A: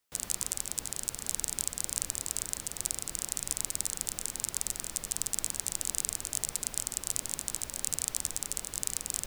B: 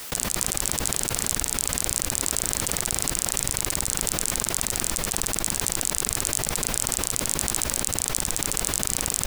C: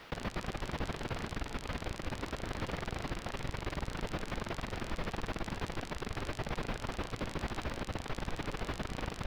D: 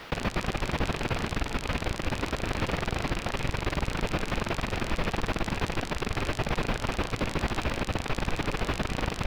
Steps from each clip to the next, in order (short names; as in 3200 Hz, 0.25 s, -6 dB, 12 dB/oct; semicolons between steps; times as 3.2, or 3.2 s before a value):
fast leveller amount 100%; gain +2.5 dB
air absorption 330 m; gain -5 dB
rattling part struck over -42 dBFS, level -34 dBFS; gain +8.5 dB